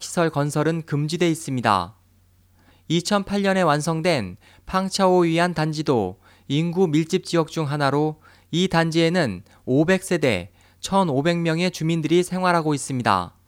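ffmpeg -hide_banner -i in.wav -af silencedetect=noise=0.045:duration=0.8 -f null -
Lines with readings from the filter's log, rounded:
silence_start: 1.85
silence_end: 2.90 | silence_duration: 1.05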